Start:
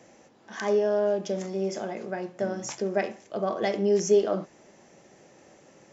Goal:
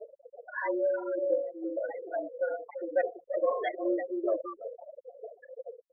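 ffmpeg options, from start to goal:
ffmpeg -i in.wav -filter_complex "[0:a]aeval=exprs='val(0)+0.5*0.0224*sgn(val(0))':channel_layout=same,asplit=2[link_01][link_02];[link_02]adelay=340,highpass=300,lowpass=3400,asoftclip=type=hard:threshold=-19.5dB,volume=-7dB[link_03];[link_01][link_03]amix=inputs=2:normalize=0,highpass=frequency=530:width_type=q:width=0.5412,highpass=frequency=530:width_type=q:width=1.307,lowpass=frequency=3400:width_type=q:width=0.5176,lowpass=frequency=3400:width_type=q:width=0.7071,lowpass=frequency=3400:width_type=q:width=1.932,afreqshift=-56,asplit=2[link_04][link_05];[link_05]acompressor=threshold=-39dB:ratio=5,volume=0dB[link_06];[link_04][link_06]amix=inputs=2:normalize=0,acrossover=split=850[link_07][link_08];[link_07]aeval=exprs='val(0)*(1-0.5/2+0.5/2*cos(2*PI*2.3*n/s))':channel_layout=same[link_09];[link_08]aeval=exprs='val(0)*(1-0.5/2-0.5/2*cos(2*PI*2.3*n/s))':channel_layout=same[link_10];[link_09][link_10]amix=inputs=2:normalize=0,bandreject=frequency=780:width=12,afftfilt=real='re*gte(hypot(re,im),0.0631)':imag='im*gte(hypot(re,im),0.0631)':win_size=1024:overlap=0.75,acontrast=54,asplit=2[link_11][link_12];[link_12]adelay=2.4,afreqshift=-1.9[link_13];[link_11][link_13]amix=inputs=2:normalize=1,volume=-3.5dB" out.wav

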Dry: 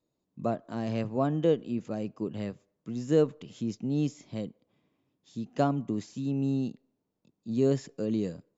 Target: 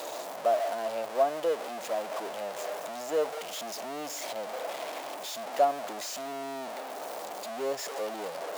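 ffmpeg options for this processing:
ffmpeg -i in.wav -af "aeval=exprs='val(0)+0.5*0.0501*sgn(val(0))':channel_layout=same,highpass=frequency=650:width_type=q:width=3.5,volume=-6dB" out.wav

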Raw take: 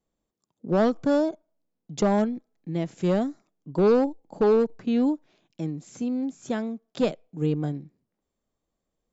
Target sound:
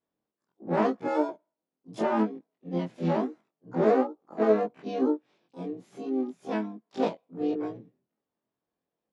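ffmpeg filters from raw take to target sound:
ffmpeg -i in.wav -filter_complex "[0:a]afftfilt=real='re':imag='-im':win_size=2048:overlap=0.75,highpass=140,lowpass=3200,asplit=3[link_01][link_02][link_03];[link_02]asetrate=52444,aresample=44100,atempo=0.840896,volume=-15dB[link_04];[link_03]asetrate=66075,aresample=44100,atempo=0.66742,volume=-4dB[link_05];[link_01][link_04][link_05]amix=inputs=3:normalize=0" out.wav

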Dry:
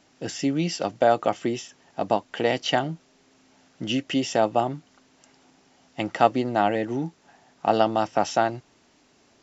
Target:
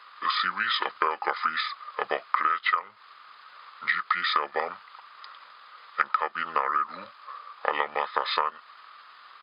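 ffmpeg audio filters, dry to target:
ffmpeg -i in.wav -af "highpass=frequency=1800:width_type=q:width=6.9,acompressor=threshold=-29dB:ratio=12,asetrate=29433,aresample=44100,atempo=1.49831,volume=8dB" out.wav

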